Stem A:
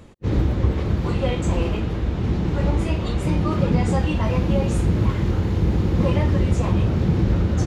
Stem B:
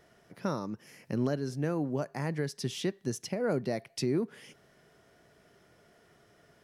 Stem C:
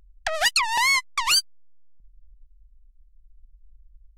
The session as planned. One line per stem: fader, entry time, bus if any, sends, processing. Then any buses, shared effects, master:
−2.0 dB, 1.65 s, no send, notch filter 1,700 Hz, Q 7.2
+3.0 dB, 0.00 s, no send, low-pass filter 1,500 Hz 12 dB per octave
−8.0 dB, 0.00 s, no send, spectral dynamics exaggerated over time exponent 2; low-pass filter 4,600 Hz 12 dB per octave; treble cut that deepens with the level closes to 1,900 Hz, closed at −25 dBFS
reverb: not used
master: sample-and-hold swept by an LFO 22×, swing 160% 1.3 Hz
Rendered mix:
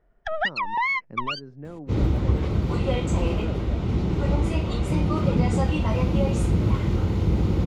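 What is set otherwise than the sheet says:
stem B +3.0 dB → −7.5 dB
stem C −8.0 dB → +2.0 dB
master: missing sample-and-hold swept by an LFO 22×, swing 160% 1.3 Hz

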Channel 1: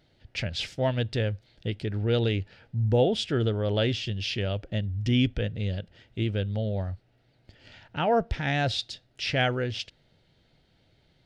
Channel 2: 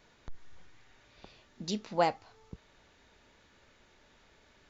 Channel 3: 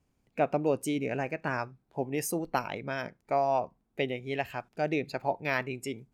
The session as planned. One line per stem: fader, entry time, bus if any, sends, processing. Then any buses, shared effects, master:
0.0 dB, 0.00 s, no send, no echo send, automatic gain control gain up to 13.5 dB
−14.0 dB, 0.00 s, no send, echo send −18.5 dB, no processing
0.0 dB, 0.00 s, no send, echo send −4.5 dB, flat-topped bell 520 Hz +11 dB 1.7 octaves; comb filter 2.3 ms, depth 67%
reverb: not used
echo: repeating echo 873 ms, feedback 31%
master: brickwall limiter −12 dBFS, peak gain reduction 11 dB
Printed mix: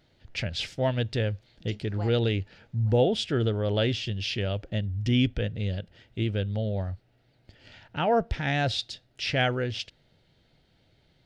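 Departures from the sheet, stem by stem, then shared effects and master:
stem 1: missing automatic gain control gain up to 13.5 dB
stem 3: muted

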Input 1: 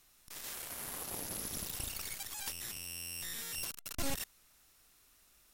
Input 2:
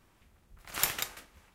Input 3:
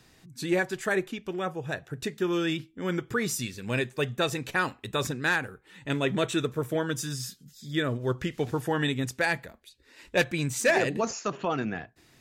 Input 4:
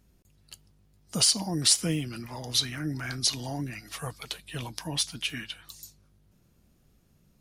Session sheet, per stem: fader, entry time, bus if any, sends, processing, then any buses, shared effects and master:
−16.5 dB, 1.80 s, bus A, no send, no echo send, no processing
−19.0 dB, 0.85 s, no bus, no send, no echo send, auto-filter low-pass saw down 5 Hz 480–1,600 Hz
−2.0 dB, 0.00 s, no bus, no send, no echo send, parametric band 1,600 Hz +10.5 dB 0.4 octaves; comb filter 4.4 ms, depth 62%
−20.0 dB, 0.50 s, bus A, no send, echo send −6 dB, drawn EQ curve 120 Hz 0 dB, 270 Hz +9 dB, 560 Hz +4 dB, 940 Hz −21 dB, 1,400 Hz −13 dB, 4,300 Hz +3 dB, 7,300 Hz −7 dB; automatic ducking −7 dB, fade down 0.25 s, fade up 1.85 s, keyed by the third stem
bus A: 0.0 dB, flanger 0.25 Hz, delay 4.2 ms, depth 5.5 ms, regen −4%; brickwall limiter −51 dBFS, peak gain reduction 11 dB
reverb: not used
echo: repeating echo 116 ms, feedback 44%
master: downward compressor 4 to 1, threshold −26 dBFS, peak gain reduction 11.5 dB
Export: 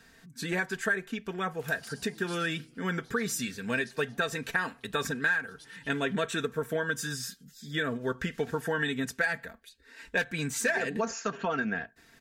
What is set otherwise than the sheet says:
stem 1: muted
stem 2: missing auto-filter low-pass saw down 5 Hz 480–1,600 Hz
stem 4: missing drawn EQ curve 120 Hz 0 dB, 270 Hz +9 dB, 560 Hz +4 dB, 940 Hz −21 dB, 1,400 Hz −13 dB, 4,300 Hz +3 dB, 7,300 Hz −7 dB

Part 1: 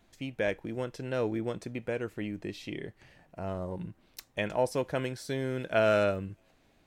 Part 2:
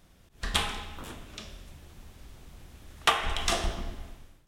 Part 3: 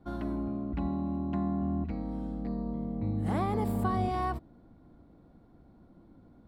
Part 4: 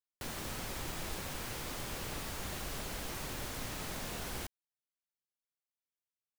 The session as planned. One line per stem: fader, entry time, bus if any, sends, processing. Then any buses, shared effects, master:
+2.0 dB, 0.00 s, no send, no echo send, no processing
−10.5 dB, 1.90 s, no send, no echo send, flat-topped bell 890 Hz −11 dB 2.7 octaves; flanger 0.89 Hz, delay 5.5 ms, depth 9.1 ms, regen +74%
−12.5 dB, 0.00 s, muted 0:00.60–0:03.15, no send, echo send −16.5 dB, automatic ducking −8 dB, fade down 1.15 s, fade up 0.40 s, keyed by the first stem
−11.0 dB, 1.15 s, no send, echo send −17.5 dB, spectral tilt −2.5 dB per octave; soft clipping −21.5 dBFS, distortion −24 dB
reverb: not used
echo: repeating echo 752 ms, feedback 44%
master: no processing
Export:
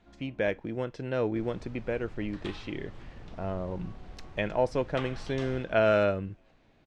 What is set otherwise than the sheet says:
stem 2: missing flat-topped bell 890 Hz −11 dB 2.7 octaves
stem 3 −12.5 dB → −19.0 dB
master: extra high-frequency loss of the air 130 metres

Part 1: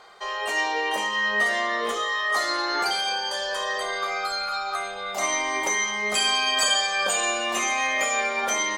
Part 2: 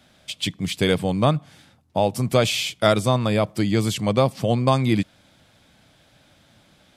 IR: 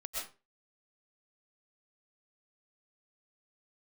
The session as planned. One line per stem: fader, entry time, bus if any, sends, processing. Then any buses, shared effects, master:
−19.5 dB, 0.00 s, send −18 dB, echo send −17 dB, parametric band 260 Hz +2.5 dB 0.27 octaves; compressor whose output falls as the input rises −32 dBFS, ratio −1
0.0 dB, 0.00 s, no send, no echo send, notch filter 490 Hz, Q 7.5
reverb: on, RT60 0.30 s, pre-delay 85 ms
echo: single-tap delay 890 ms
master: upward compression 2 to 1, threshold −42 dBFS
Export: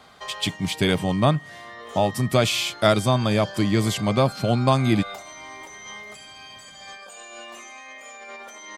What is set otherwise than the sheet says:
stem 1 −19.5 dB → −9.0 dB
master: missing upward compression 2 to 1, threshold −42 dBFS

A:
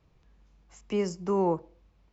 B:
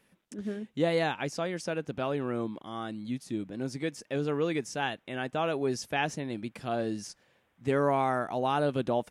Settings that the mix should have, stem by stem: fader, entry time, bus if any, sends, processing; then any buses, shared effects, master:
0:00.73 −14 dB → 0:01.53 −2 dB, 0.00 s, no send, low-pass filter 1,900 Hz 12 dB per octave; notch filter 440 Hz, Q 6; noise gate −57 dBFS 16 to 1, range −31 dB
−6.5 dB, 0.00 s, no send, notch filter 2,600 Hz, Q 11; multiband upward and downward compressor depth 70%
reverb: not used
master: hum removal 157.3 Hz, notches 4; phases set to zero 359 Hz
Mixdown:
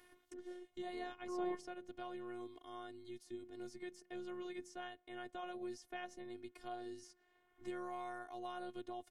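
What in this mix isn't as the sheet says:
stem A −14.0 dB → −22.5 dB
stem B −6.5 dB → −14.5 dB

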